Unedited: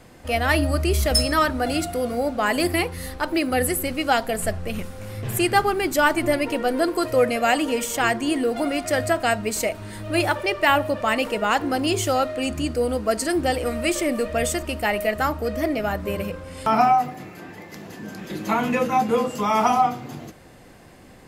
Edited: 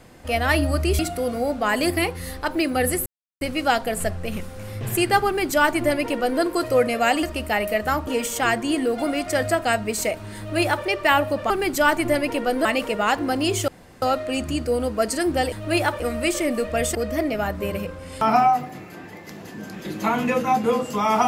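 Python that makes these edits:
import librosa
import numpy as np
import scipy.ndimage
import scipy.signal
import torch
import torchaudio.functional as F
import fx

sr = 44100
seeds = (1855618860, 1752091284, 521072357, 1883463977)

y = fx.edit(x, sr, fx.cut(start_s=0.99, length_s=0.77),
    fx.insert_silence(at_s=3.83, length_s=0.35),
    fx.duplicate(start_s=5.68, length_s=1.15, to_s=11.08),
    fx.duplicate(start_s=9.95, length_s=0.48, to_s=13.61),
    fx.insert_room_tone(at_s=12.11, length_s=0.34),
    fx.move(start_s=14.56, length_s=0.84, to_s=7.65), tone=tone)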